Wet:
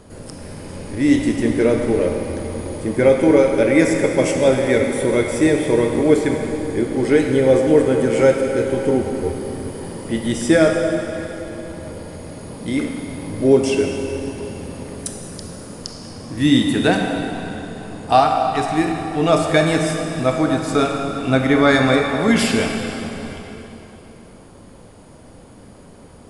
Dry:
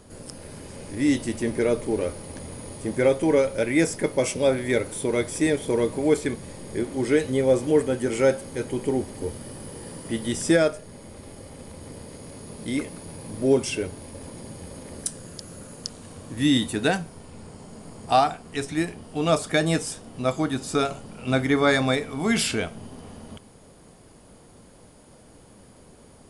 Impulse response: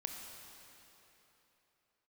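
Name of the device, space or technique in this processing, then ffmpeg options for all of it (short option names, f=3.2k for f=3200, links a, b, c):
swimming-pool hall: -filter_complex "[1:a]atrim=start_sample=2205[a];[0:a][a]afir=irnorm=-1:irlink=0,highshelf=f=4k:g=-6.5,volume=8.5dB"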